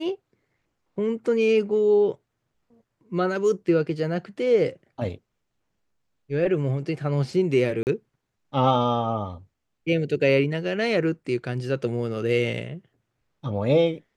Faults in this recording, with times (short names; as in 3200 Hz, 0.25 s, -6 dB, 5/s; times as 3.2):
7.83–7.87 gap 39 ms